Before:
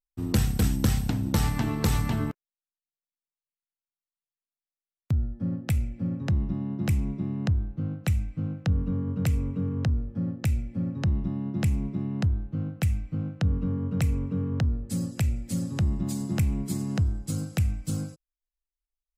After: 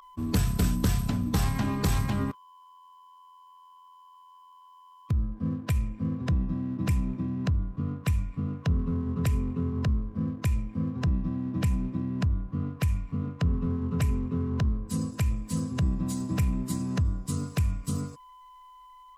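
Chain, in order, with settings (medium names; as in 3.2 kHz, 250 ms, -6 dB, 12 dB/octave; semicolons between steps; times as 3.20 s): whistle 1.1 kHz -43 dBFS; formant-preserving pitch shift -1.5 st; waveshaping leveller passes 1; trim -4 dB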